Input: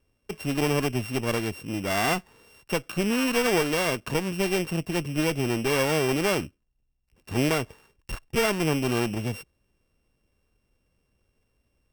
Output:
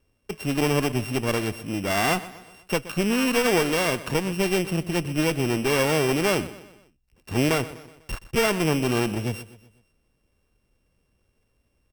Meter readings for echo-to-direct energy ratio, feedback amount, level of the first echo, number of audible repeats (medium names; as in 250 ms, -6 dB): -15.5 dB, 48%, -16.5 dB, 3